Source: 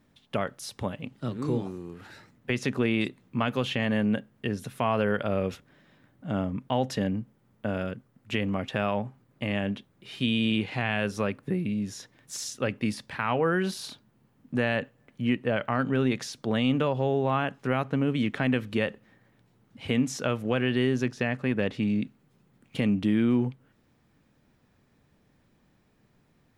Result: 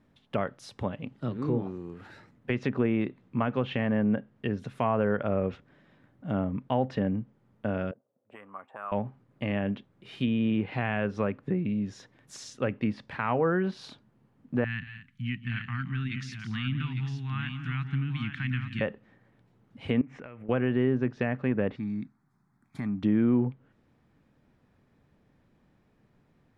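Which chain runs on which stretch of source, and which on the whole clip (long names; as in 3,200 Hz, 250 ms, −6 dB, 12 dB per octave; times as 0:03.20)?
0:07.91–0:08.92: envelope filter 510–1,200 Hz, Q 4, up, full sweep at −24 dBFS + linearly interpolated sample-rate reduction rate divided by 4×
0:14.64–0:18.81: Chebyshev band-stop filter 150–1,900 Hz + multi-tap delay 172/226/853 ms −14.5/−14.5/−7 dB
0:20.01–0:20.49: high shelf with overshoot 3,200 Hz −12 dB, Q 3 + downward compressor 12 to 1, threshold −39 dBFS
0:21.76–0:23.03: low-shelf EQ 270 Hz −6.5 dB + phaser with its sweep stopped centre 1,200 Hz, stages 4
whole clip: treble cut that deepens with the level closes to 1,800 Hz, closed at −22 dBFS; high-shelf EQ 3,800 Hz −11.5 dB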